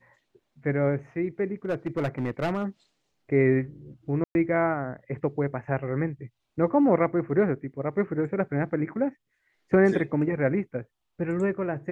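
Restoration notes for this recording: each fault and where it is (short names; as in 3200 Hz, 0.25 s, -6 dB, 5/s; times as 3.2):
1.65–2.64 clipped -22.5 dBFS
4.24–4.35 gap 0.111 s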